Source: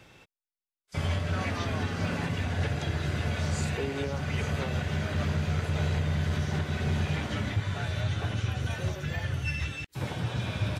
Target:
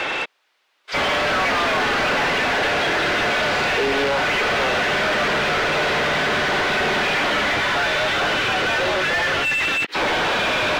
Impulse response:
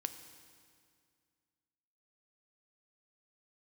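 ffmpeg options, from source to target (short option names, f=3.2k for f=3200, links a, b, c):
-filter_complex "[0:a]acrossover=split=250 4200:gain=0.0794 1 0.112[a][b][c];[a][b][c]amix=inputs=3:normalize=0,asplit=2[d][e];[e]highpass=f=720:p=1,volume=38dB,asoftclip=type=tanh:threshold=-21dB[f];[d][f]amix=inputs=2:normalize=0,lowpass=f=5.4k:p=1,volume=-6dB,acrossover=split=5500[g][h];[h]acompressor=threshold=-55dB:ratio=4:attack=1:release=60[i];[g][i]amix=inputs=2:normalize=0,volume=7.5dB"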